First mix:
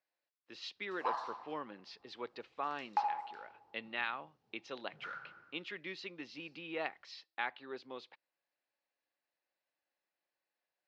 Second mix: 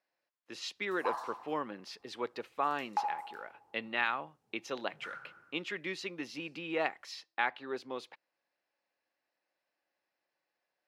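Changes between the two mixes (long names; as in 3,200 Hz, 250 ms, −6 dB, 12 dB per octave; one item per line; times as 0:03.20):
background −6.5 dB
master: remove transistor ladder low-pass 5,500 Hz, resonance 30%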